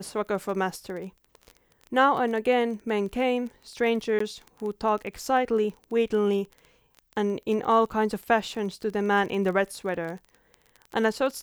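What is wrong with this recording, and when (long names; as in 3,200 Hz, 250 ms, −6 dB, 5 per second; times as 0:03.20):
surface crackle 22 per second −33 dBFS
0:04.19–0:04.20: drop-out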